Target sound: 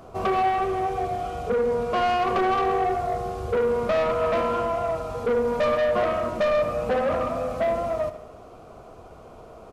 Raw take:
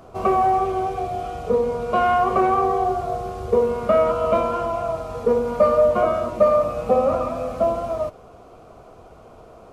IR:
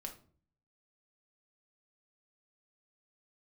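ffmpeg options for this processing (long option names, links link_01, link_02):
-af "asoftclip=type=tanh:threshold=-19dB,aecho=1:1:73|146|219|292|365|438:0.2|0.12|0.0718|0.0431|0.0259|0.0155"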